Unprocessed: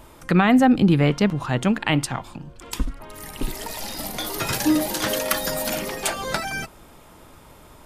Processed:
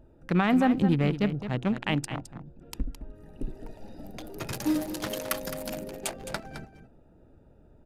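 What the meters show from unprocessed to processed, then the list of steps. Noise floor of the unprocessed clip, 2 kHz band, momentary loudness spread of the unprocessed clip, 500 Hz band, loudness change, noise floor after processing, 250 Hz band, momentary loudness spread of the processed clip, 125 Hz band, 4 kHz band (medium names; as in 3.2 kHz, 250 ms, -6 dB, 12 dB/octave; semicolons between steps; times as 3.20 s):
-48 dBFS, -9.0 dB, 16 LU, -7.5 dB, -6.5 dB, -57 dBFS, -6.5 dB, 22 LU, -6.5 dB, -11.0 dB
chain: local Wiener filter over 41 samples; on a send: delay 214 ms -11 dB; on the sum: trim -6.5 dB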